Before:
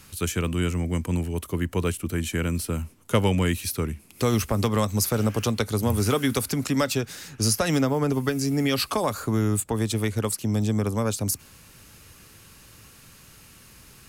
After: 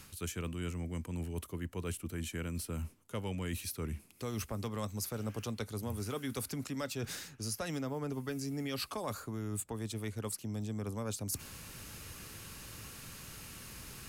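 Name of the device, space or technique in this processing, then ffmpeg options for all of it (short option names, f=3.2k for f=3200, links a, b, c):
compression on the reversed sound: -af "areverse,acompressor=threshold=-39dB:ratio=5,areverse,volume=1.5dB"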